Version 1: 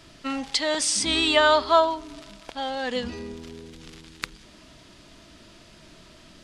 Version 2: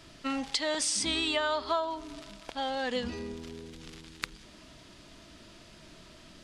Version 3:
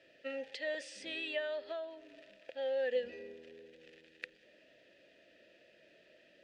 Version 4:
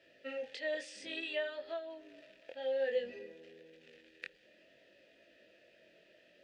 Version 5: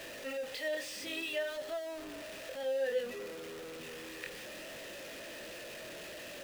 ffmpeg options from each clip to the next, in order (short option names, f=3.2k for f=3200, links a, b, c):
-af "acompressor=threshold=-24dB:ratio=5,volume=-2.5dB"
-filter_complex "[0:a]asplit=3[a][b][c];[a]bandpass=f=530:t=q:w=8,volume=0dB[d];[b]bandpass=f=1.84k:t=q:w=8,volume=-6dB[e];[c]bandpass=f=2.48k:t=q:w=8,volume=-9dB[f];[d][e][f]amix=inputs=3:normalize=0,volume=3.5dB"
-af "flanger=delay=18:depth=5.1:speed=0.57,volume=2.5dB"
-af "aeval=exprs='val(0)+0.5*0.01*sgn(val(0))':c=same,volume=-1dB"